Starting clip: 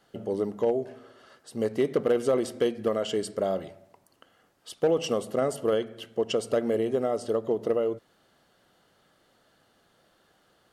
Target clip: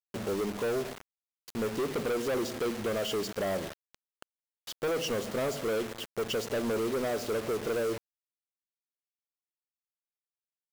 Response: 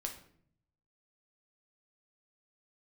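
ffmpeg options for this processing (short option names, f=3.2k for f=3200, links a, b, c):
-af "aresample=16000,asoftclip=type=tanh:threshold=-30.5dB,aresample=44100,acrusher=bits=6:mix=0:aa=0.000001,volume=2.5dB"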